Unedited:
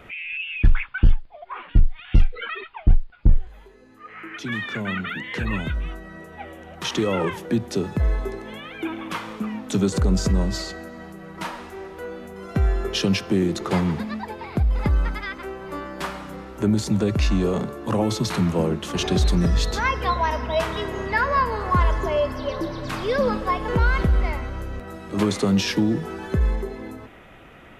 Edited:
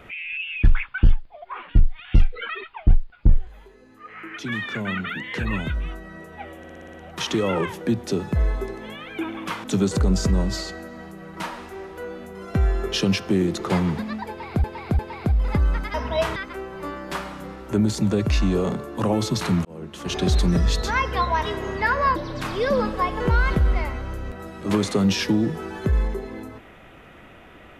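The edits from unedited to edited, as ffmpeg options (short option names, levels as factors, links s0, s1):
-filter_complex "[0:a]asplit=15[s0][s1][s2][s3][s4][s5][s6][s7][s8][s9][s10][s11][s12][s13][s14];[s0]atrim=end=6.642[s15];[s1]atrim=start=6.578:end=6.642[s16];[s2]atrim=start=6.578:end=6.642[s17];[s3]atrim=start=6.578:end=6.642[s18];[s4]atrim=start=6.578:end=6.642[s19];[s5]atrim=start=6.578:end=6.642[s20];[s6]atrim=start=6.578:end=9.282[s21];[s7]atrim=start=9.648:end=14.652[s22];[s8]atrim=start=14.298:end=14.652[s23];[s9]atrim=start=14.298:end=15.252[s24];[s10]atrim=start=20.318:end=20.742[s25];[s11]atrim=start=15.248:end=18.54,asetpts=PTS-STARTPTS,afade=t=out:st=3.288:d=0.004:c=hsin[s26];[s12]atrim=start=18.54:end=20.322,asetpts=PTS-STARTPTS,afade=t=in:d=0.66[s27];[s13]atrim=start=20.738:end=21.472[s28];[s14]atrim=start=22.638[s29];[s15][s16]acrossfade=d=0.004:c1=hsin:c2=hsin[s30];[s30][s17]acrossfade=d=0.004:c1=hsin:c2=hsin[s31];[s31][s18]acrossfade=d=0.004:c1=hsin:c2=hsin[s32];[s32][s19]acrossfade=d=0.004:c1=hsin:c2=hsin[s33];[s33][s20]acrossfade=d=0.004:c1=hsin:c2=hsin[s34];[s34][s21]acrossfade=d=0.004:c1=hsin:c2=hsin[s35];[s35][s22]acrossfade=d=0.004:c1=hsin:c2=hsin[s36];[s36][s23]acrossfade=d=0.004:c1=hsin:c2=hsin[s37];[s37][s24]acrossfade=d=0.004:c1=hsin:c2=hsin[s38];[s38][s25]acrossfade=d=0.004:c1=hsin:c2=hsin[s39];[s26][s27]concat=n=2:v=0:a=1[s40];[s39][s40]acrossfade=d=0.004:c1=hsin:c2=hsin[s41];[s41][s28]acrossfade=d=0.004:c1=hsin:c2=hsin[s42];[s42][s29]acrossfade=d=0.004:c1=hsin:c2=hsin"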